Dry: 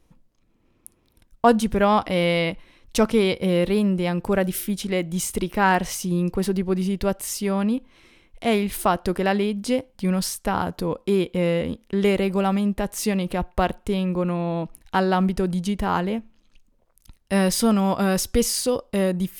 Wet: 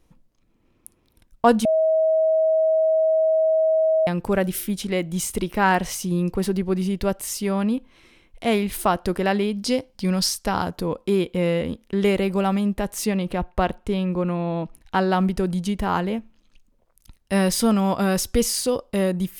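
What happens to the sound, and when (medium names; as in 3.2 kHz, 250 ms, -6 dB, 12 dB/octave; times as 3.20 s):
1.65–4.07 s: bleep 638 Hz -15.5 dBFS
9.53–10.69 s: peaking EQ 5 kHz +9 dB 0.73 oct
13.04–15.09 s: treble shelf 5.5 kHz -> 8.1 kHz -7.5 dB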